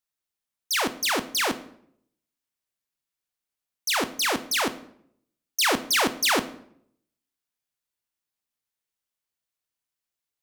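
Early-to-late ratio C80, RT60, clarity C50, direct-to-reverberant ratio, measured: 18.5 dB, 0.70 s, 15.0 dB, 11.0 dB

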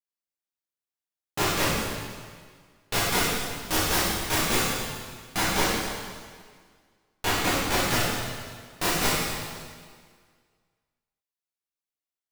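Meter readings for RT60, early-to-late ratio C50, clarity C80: 1.8 s, -3.0 dB, 0.0 dB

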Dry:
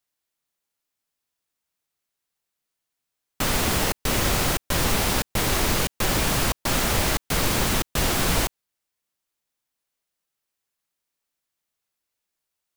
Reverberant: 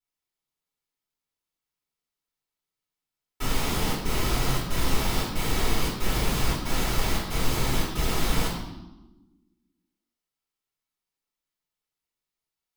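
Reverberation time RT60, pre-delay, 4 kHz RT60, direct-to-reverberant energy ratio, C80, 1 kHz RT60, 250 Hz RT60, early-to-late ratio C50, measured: 1.1 s, 3 ms, 0.90 s, -9.0 dB, 6.0 dB, 1.0 s, 1.8 s, 3.0 dB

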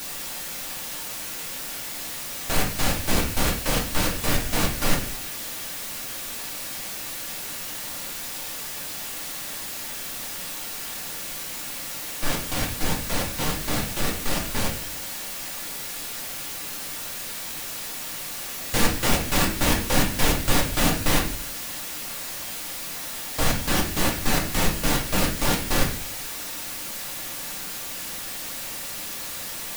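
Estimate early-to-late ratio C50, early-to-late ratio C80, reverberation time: 7.5 dB, 12.0 dB, 0.45 s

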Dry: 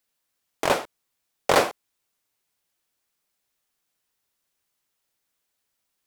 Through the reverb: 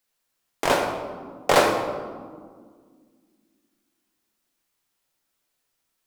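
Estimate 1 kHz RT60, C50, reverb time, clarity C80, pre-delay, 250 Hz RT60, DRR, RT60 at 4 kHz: 1.7 s, 4.5 dB, 1.9 s, 6.5 dB, 4 ms, 3.1 s, 1.5 dB, 0.90 s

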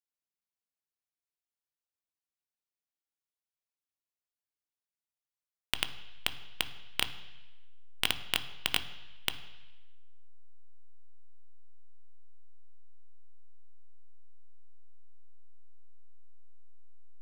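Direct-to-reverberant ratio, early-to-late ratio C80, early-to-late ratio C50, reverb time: 9.0 dB, 15.5 dB, 13.5 dB, 1.1 s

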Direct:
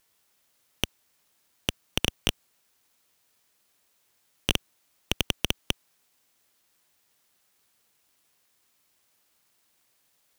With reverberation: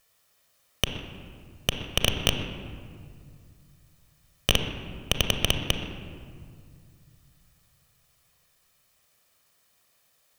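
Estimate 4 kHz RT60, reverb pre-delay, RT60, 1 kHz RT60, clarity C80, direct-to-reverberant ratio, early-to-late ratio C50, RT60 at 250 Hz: 1.2 s, 31 ms, 2.1 s, 2.0 s, 7.0 dB, 5.0 dB, 6.0 dB, 2.8 s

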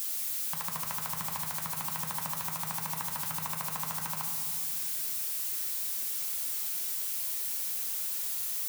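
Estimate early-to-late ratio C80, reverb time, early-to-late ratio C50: 5.5 dB, 2.0 s, 4.5 dB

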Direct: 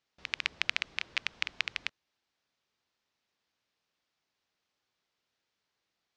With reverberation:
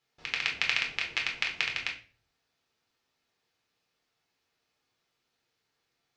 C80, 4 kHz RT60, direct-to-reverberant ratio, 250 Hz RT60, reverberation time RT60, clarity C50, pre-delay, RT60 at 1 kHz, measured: 14.5 dB, 0.35 s, -0.5 dB, 0.55 s, 0.40 s, 10.0 dB, 7 ms, 0.35 s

